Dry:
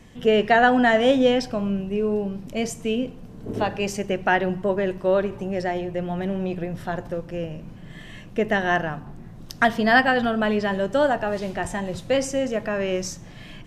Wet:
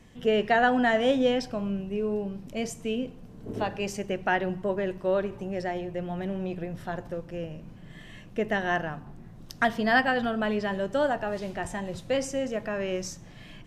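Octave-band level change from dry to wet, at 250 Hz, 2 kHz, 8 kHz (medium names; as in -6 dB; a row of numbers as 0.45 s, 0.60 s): -5.5 dB, -5.5 dB, -5.5 dB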